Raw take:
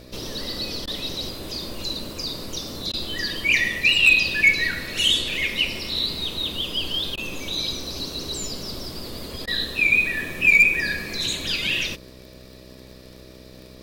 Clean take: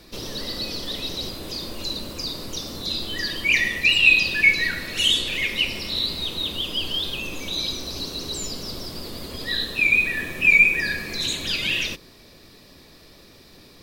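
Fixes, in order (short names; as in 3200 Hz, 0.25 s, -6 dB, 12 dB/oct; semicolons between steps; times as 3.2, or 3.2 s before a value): clip repair -8.5 dBFS; de-click; de-hum 63.5 Hz, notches 10; interpolate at 0.86/2.92/7.16/9.46, 13 ms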